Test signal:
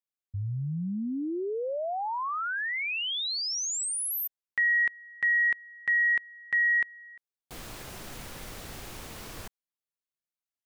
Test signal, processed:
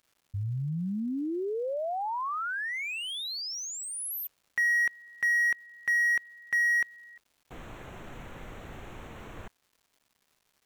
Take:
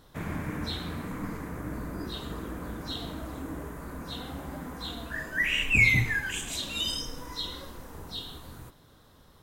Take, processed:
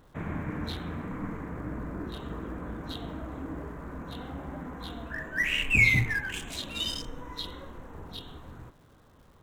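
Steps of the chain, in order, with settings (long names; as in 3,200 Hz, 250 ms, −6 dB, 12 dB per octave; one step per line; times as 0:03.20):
adaptive Wiener filter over 9 samples
surface crackle 410 per second −56 dBFS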